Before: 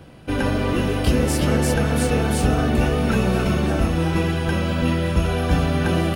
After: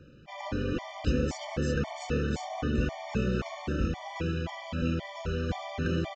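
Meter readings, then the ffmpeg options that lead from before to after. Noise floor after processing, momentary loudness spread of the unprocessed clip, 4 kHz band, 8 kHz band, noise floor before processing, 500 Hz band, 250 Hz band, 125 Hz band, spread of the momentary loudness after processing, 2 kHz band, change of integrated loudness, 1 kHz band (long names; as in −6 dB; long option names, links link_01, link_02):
−45 dBFS, 2 LU, −12.0 dB, −16.5 dB, −24 dBFS, −11.5 dB, −11.5 dB, −12.0 dB, 4 LU, −11.5 dB, −11.5 dB, −12.0 dB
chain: -af "aresample=16000,aresample=44100,afftfilt=real='re*gt(sin(2*PI*1.9*pts/sr)*(1-2*mod(floor(b*sr/1024/600),2)),0)':imag='im*gt(sin(2*PI*1.9*pts/sr)*(1-2*mod(floor(b*sr/1024/600),2)),0)':win_size=1024:overlap=0.75,volume=-8.5dB"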